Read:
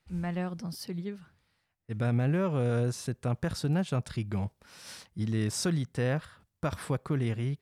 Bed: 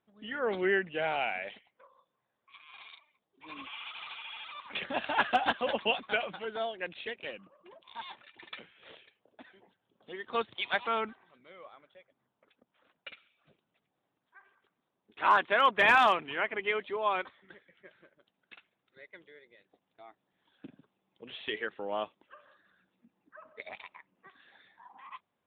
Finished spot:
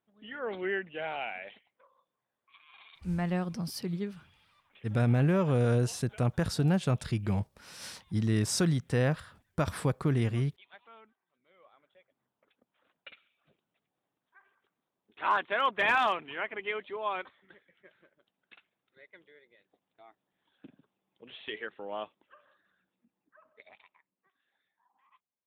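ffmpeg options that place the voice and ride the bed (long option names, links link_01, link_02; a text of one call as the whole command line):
ffmpeg -i stem1.wav -i stem2.wav -filter_complex "[0:a]adelay=2950,volume=2dB[link_01];[1:a]volume=15.5dB,afade=type=out:start_time=3.09:duration=0.24:silence=0.112202,afade=type=in:start_time=11.25:duration=0.98:silence=0.1,afade=type=out:start_time=22.11:duration=2.19:silence=0.158489[link_02];[link_01][link_02]amix=inputs=2:normalize=0" out.wav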